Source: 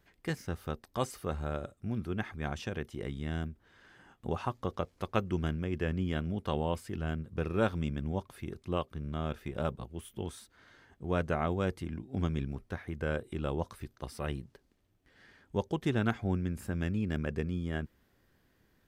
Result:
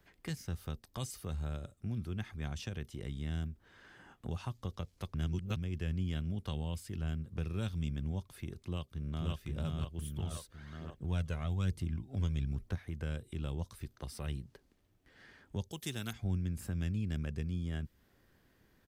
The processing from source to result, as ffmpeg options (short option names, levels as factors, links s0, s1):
-filter_complex "[0:a]asplit=2[s0][s1];[s1]afade=t=in:st=8.62:d=0.01,afade=t=out:st=9.31:d=0.01,aecho=0:1:530|1060|1590|2120|2650|3180:0.944061|0.424827|0.191172|0.0860275|0.0387124|0.0174206[s2];[s0][s2]amix=inputs=2:normalize=0,asettb=1/sr,asplit=3[s3][s4][s5];[s3]atrim=end=9.984[s6];[s4]atrim=start=9.98:end=12.75,asetpts=PTS-STARTPTS,afade=t=in:d=0.004:c=qsin,afade=t=out:st=2.766:d=0.004:c=qsin,aphaser=in_gain=1:out_gain=1:delay=2.1:decay=0.44:speed=1.1:type=triangular[s7];[s5]atrim=start=12.746[s8];[s6][s7]acrossfade=d=0.004:c1=hsin:c2=qsin[s9];[s9][s8]acrossfade=d=0.004:c1=qsin:c2=hsin,asettb=1/sr,asplit=3[s10][s11][s12];[s10]atrim=end=15.714[s13];[s11]atrim=start=15.71:end=16.13,asetpts=PTS-STARTPTS,afade=t=in:d=0.004:c=qsin,afade=t=out:st=0.416:d=0.004:c=qsin,aemphasis=mode=production:type=bsi[s14];[s12]atrim=start=16.126[s15];[s13][s14]acrossfade=d=0.004:c1=hsin:c2=qsin[s16];[s16][s15]acrossfade=d=0.004:c1=qsin:c2=hsin,asplit=3[s17][s18][s19];[s17]atrim=end=5.142[s20];[s18]atrim=start=5.138:end=5.562,asetpts=PTS-STARTPTS,areverse[s21];[s19]atrim=start=5.558[s22];[s20][s21]acrossfade=d=0.004:c1=hsin:c2=hsin[s23];[s23][s22]acrossfade=d=0.004:c1=hsin:c2=hsin,acrossover=split=170|3000[s24][s25][s26];[s25]acompressor=threshold=0.00398:ratio=4[s27];[s24][s27][s26]amix=inputs=3:normalize=0,volume=1.12"